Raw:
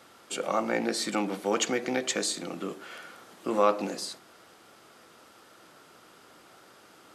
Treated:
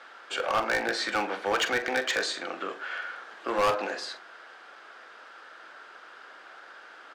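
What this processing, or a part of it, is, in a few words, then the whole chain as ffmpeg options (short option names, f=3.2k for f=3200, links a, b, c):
megaphone: -filter_complex "[0:a]highpass=570,lowpass=3.6k,equalizer=f=1.6k:t=o:w=0.31:g=10,asoftclip=type=hard:threshold=-26dB,asplit=2[a][b];[b]adelay=43,volume=-12dB[c];[a][c]amix=inputs=2:normalize=0,volume=5.5dB"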